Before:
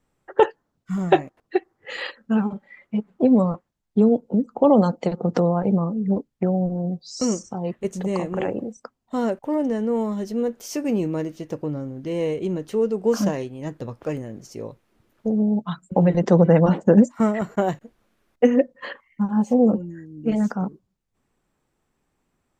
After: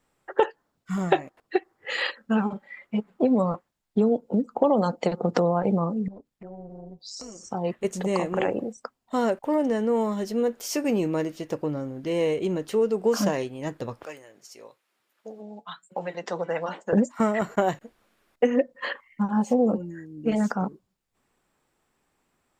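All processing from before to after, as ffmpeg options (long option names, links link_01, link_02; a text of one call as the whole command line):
ffmpeg -i in.wav -filter_complex "[0:a]asettb=1/sr,asplit=3[link_01][link_02][link_03];[link_01]atrim=end=6.084[link_04];[link_02]atrim=start=6.08:end=7.43,asetpts=PTS-STARTPTS,afade=type=in:duration=0.004:curve=qsin,afade=type=out:start_time=1.346:duration=0.004:curve=qsin,acompressor=threshold=-36dB:ratio=6:attack=3.2:release=140:knee=1:detection=peak,tremolo=f=200:d=0.621[link_05];[link_03]atrim=start=7.426[link_06];[link_04][link_05]acrossfade=duration=0.004:curve1=hsin:curve2=qsin[link_07];[link_07][link_06]acrossfade=duration=0.004:curve1=qsin:curve2=hsin,asettb=1/sr,asplit=3[link_08][link_09][link_10];[link_08]atrim=end=14.054[link_11];[link_09]atrim=start=14.05:end=16.93,asetpts=PTS-STARTPTS,afade=type=in:duration=0.004:curve=qsin,afade=type=out:start_time=2.876:duration=0.004:curve=qsin,highpass=frequency=1300:poles=1,flanger=delay=4.9:depth=3.3:regen=-74:speed=1:shape=triangular[link_12];[link_10]atrim=start=16.926[link_13];[link_11][link_12]acrossfade=duration=0.004:curve1=hsin:curve2=qsin[link_14];[link_14][link_13]acrossfade=duration=0.004:curve1=qsin:curve2=hsin,lowshelf=frequency=340:gain=-9,bandreject=frequency=6100:width=18,acompressor=threshold=-22dB:ratio=3,volume=4dB" out.wav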